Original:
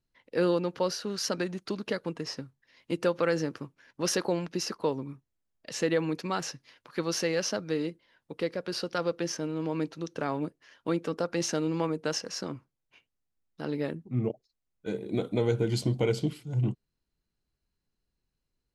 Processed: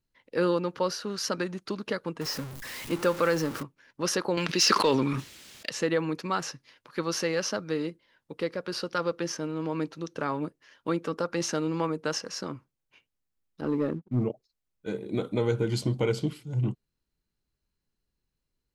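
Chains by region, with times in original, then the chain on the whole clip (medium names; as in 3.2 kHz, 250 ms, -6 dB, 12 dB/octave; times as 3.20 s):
2.21–3.63 s: jump at every zero crossing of -35 dBFS + treble shelf 9 kHz +5 dB
4.37–5.70 s: frequency weighting D + waveshaping leveller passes 1 + decay stretcher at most 26 dB/s
13.61–14.24 s: expander -40 dBFS + FFT filter 140 Hz 0 dB, 300 Hz +3 dB, 10 kHz -15 dB + waveshaping leveller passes 1
whole clip: band-stop 700 Hz, Q 14; dynamic bell 1.2 kHz, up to +5 dB, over -49 dBFS, Q 1.9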